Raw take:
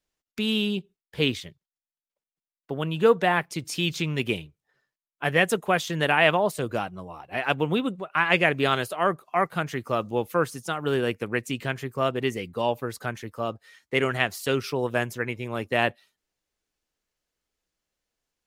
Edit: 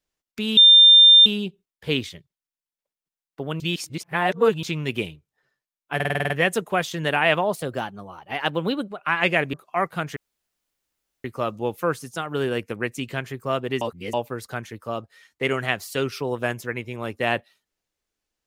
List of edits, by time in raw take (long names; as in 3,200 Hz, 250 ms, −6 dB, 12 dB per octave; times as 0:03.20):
0:00.57: insert tone 3,600 Hz −7.5 dBFS 0.69 s
0:02.91–0:03.94: reverse
0:05.26: stutter 0.05 s, 8 plays
0:06.53–0:08.06: play speed 109%
0:08.62–0:09.13: remove
0:09.76: splice in room tone 1.08 s
0:12.33–0:12.65: reverse